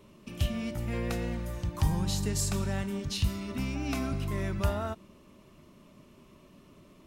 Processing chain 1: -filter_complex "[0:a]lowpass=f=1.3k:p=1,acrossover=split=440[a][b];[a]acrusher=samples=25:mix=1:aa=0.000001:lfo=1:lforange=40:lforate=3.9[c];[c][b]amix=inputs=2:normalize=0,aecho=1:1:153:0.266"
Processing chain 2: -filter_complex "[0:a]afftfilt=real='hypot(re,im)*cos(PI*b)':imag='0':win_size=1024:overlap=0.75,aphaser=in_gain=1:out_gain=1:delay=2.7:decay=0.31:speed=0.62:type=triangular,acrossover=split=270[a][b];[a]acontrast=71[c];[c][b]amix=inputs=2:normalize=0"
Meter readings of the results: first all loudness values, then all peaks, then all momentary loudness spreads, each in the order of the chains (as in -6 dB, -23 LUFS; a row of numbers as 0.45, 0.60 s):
-32.5, -32.0 LUFS; -15.5, -13.0 dBFS; 6, 8 LU